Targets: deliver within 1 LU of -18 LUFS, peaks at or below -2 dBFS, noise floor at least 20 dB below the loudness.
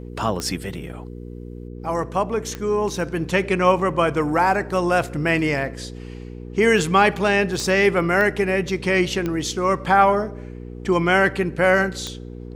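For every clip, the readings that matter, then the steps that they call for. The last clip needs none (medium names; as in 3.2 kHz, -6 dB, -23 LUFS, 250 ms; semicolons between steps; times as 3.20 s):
clicks found 6; hum 60 Hz; highest harmonic 480 Hz; hum level -33 dBFS; loudness -20.0 LUFS; peak level -3.5 dBFS; loudness target -18.0 LUFS
-> de-click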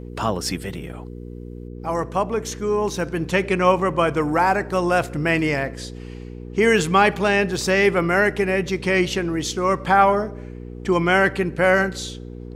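clicks found 0; hum 60 Hz; highest harmonic 480 Hz; hum level -33 dBFS
-> de-hum 60 Hz, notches 8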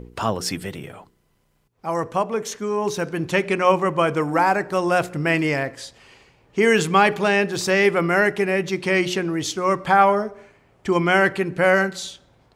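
hum not found; loudness -20.5 LUFS; peak level -3.5 dBFS; loudness target -18.0 LUFS
-> trim +2.5 dB; peak limiter -2 dBFS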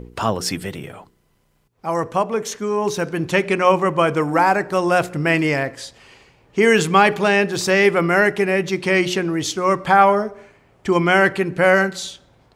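loudness -18.0 LUFS; peak level -2.0 dBFS; noise floor -62 dBFS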